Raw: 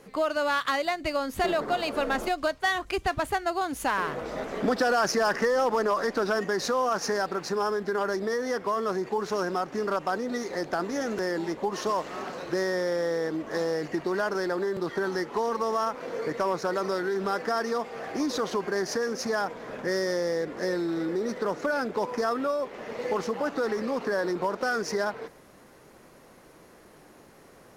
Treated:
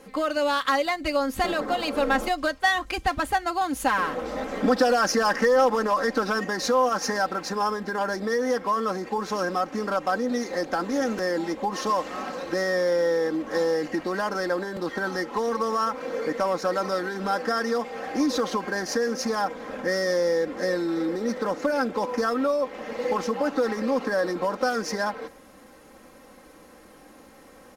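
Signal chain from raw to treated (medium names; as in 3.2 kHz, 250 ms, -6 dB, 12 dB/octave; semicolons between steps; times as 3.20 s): comb 3.8 ms, depth 64%; trim +1.5 dB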